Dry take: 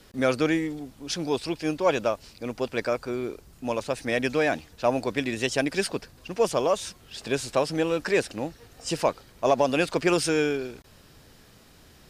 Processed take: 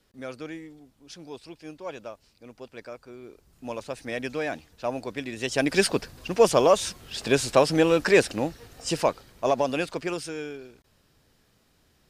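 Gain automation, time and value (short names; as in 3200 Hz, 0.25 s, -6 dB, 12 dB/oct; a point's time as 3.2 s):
3.2 s -14 dB
3.64 s -6 dB
5.34 s -6 dB
5.76 s +5 dB
8.23 s +5 dB
9.73 s -3 dB
10.33 s -11 dB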